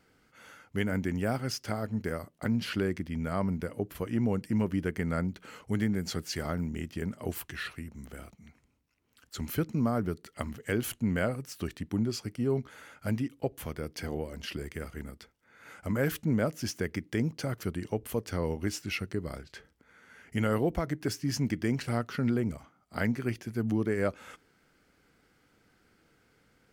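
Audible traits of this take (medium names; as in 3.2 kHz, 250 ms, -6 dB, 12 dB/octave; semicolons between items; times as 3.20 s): noise floor -68 dBFS; spectral tilt -6.0 dB/octave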